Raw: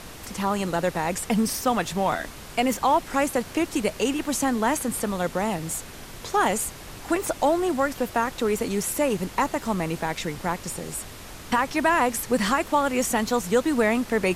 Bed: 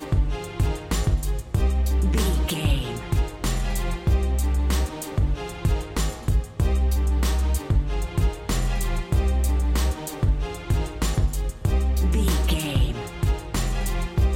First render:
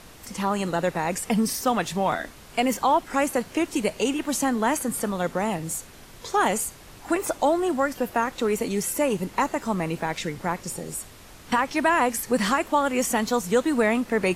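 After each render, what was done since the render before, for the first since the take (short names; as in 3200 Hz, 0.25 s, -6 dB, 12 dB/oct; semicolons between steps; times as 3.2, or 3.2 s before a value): noise print and reduce 6 dB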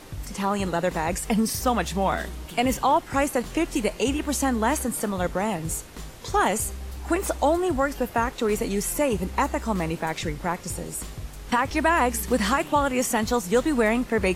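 add bed -14.5 dB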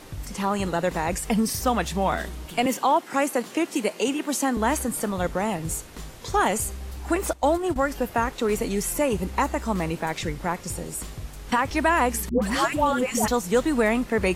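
2.66–4.57 HPF 200 Hz 24 dB/oct; 7.33–7.76 gate -25 dBFS, range -14 dB; 12.29–13.28 dispersion highs, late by 0.129 s, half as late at 740 Hz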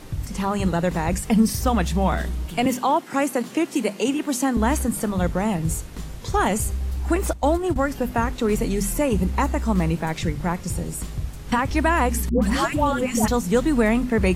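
tone controls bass +10 dB, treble 0 dB; notches 50/100/150/200/250 Hz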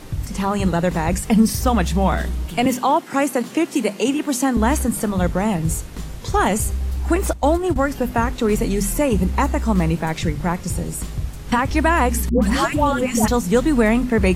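gain +3 dB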